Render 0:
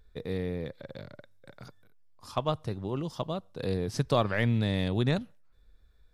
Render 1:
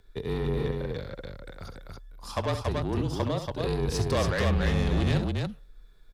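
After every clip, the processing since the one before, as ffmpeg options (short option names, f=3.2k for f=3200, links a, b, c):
-af "asoftclip=type=tanh:threshold=-28dB,aecho=1:1:67.06|282.8:0.355|0.708,afreqshift=-35,volume=5.5dB"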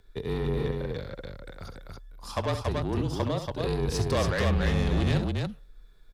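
-af anull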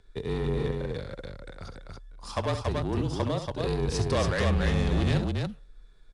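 -ar 22050 -c:a adpcm_ima_wav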